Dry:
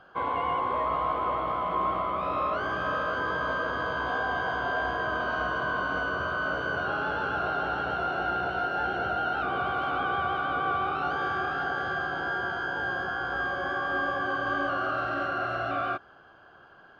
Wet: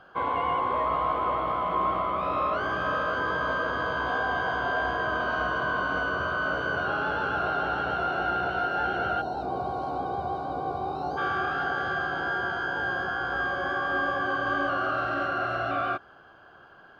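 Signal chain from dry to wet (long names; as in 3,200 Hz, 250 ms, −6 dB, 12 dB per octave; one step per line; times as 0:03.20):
gain on a spectral selection 0:09.21–0:11.18, 1,100–3,700 Hz −18 dB
level +1.5 dB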